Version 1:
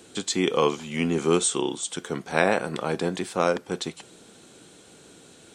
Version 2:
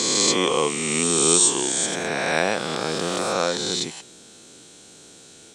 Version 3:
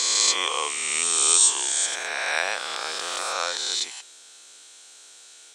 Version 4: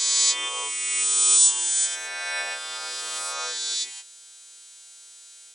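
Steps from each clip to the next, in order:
peak hold with a rise ahead of every peak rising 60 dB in 2.70 s; parametric band 5,900 Hz +8.5 dB 1.5 octaves; level −3.5 dB
high-pass filter 980 Hz 12 dB per octave
every partial snapped to a pitch grid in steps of 2 semitones; level −8.5 dB

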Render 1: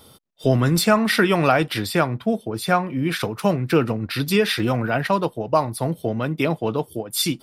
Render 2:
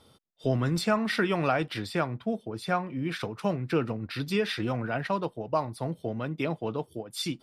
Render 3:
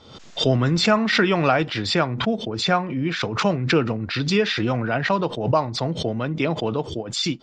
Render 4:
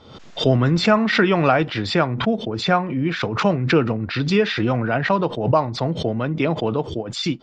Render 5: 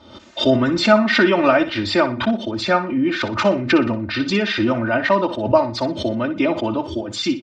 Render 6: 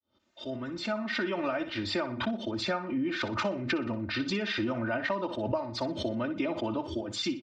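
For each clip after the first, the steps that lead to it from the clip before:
high-frequency loss of the air 51 metres; level −8.5 dB
elliptic low-pass filter 7,100 Hz, stop band 40 dB; background raised ahead of every attack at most 75 dB per second; level +8 dB
high-shelf EQ 4,800 Hz −11.5 dB; level +2.5 dB
high-pass filter 58 Hz; comb filter 3.3 ms, depth 98%; on a send: flutter between parallel walls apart 10.4 metres, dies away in 0.31 s; on the sum: level −1 dB
fade in at the beginning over 2.35 s; downward compressor 6 to 1, threshold −19 dBFS, peak gain reduction 10.5 dB; level −8 dB

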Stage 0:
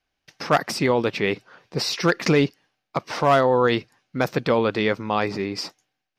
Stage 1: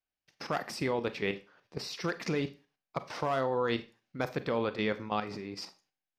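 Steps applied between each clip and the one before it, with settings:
output level in coarse steps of 11 dB
four-comb reverb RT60 0.32 s, combs from 30 ms, DRR 12 dB
level −8 dB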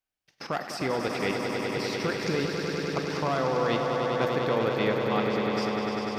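echo that builds up and dies away 99 ms, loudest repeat 5, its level −7 dB
level +2 dB

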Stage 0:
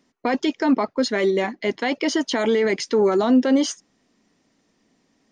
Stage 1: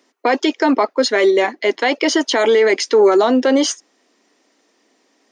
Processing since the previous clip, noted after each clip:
high-pass filter 310 Hz 24 dB per octave
level +7.5 dB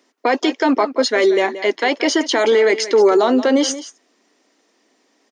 single-tap delay 178 ms −14 dB
level −1 dB

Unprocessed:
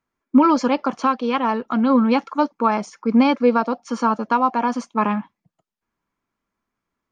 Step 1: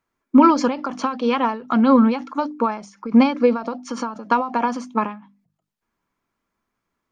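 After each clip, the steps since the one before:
mains-hum notches 50/100/150/200/250/300 Hz
every ending faded ahead of time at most 120 dB per second
level +3 dB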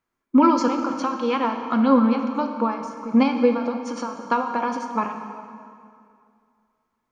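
dense smooth reverb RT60 2.4 s, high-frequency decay 0.8×, DRR 5 dB
level −3.5 dB

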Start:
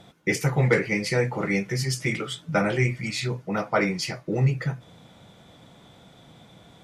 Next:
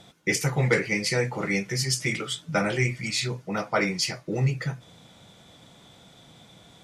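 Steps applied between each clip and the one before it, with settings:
parametric band 6,900 Hz +7.5 dB 2.5 octaves
level −2.5 dB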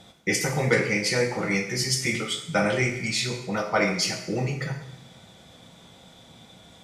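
convolution reverb, pre-delay 3 ms, DRR 3 dB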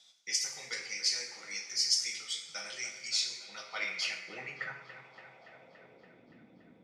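band-pass filter sweep 5,300 Hz → 300 Hz, 0:03.38–0:06.33
delay with a low-pass on its return 285 ms, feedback 70%, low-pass 2,000 Hz, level −11 dB

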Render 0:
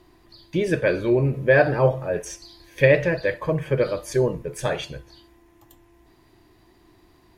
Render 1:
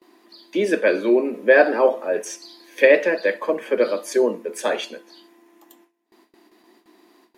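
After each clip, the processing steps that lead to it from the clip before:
Butterworth high-pass 200 Hz 96 dB per octave
noise gate with hold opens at −48 dBFS
level +3 dB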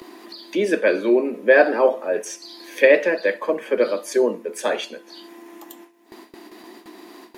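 upward compression, threshold −30 dBFS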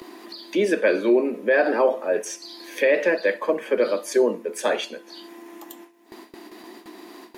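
boost into a limiter +8.5 dB
level −8.5 dB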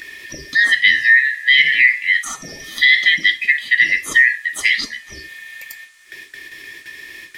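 band-splitting scrambler in four parts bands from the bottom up 4123
noise in a band 1,100–10,000 Hz −62 dBFS
level +6.5 dB

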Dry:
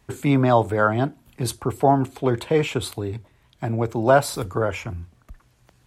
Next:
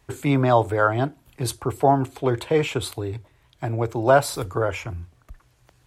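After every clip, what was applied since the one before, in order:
parametric band 210 Hz −14.5 dB 0.28 octaves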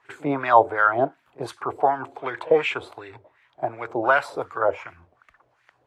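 LFO wah 2.7 Hz 550–2,100 Hz, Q 2.3
echo ahead of the sound 47 ms −22 dB
level +8.5 dB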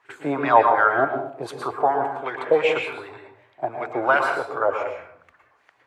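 low-shelf EQ 79 Hz −12 dB
on a send at −3 dB: convolution reverb RT60 0.60 s, pre-delay 107 ms

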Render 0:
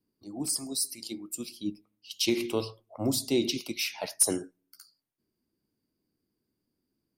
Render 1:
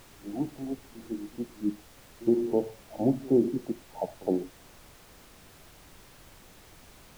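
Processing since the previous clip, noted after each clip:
brick-wall band-pass 110–920 Hz
background noise pink −57 dBFS
echo ahead of the sound 66 ms −22 dB
level +4 dB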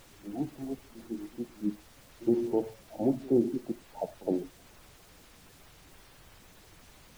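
spectral magnitudes quantised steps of 15 dB
level −2 dB

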